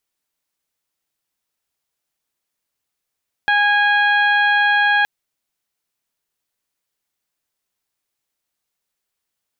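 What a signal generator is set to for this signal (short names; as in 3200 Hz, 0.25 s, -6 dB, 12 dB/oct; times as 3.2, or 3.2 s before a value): steady additive tone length 1.57 s, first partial 823 Hz, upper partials 4/-7.5/-8/-19 dB, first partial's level -18 dB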